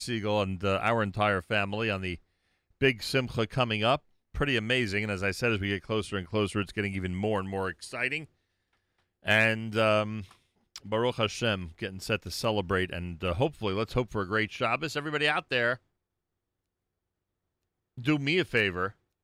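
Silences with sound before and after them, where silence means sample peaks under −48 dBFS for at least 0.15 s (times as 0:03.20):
0:02.17–0:02.81
0:03.98–0:04.35
0:08.25–0:09.24
0:10.32–0:10.76
0:15.77–0:17.98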